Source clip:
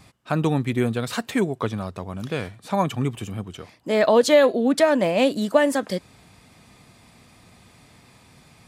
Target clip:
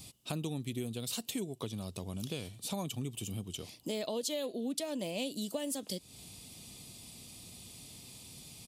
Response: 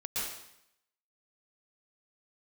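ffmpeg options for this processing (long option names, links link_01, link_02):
-af "firequalizer=gain_entry='entry(340,0);entry(560,-4);entry(1600,-14);entry(2900,6);entry(11000,14)':delay=0.05:min_phase=1,acompressor=threshold=-34dB:ratio=4,volume=-2.5dB"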